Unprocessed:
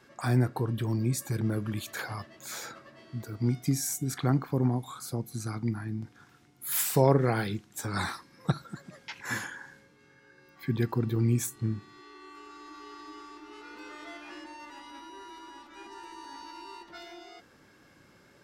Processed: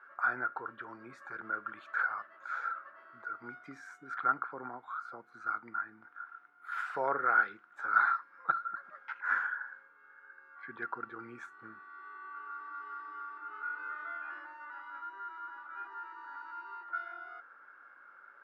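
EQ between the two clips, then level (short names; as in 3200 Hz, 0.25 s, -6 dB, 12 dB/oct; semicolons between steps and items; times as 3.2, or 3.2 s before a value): HPF 700 Hz 12 dB/oct; dynamic EQ 910 Hz, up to -3 dB, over -49 dBFS, Q 0.87; synth low-pass 1400 Hz, resonance Q 12; -4.5 dB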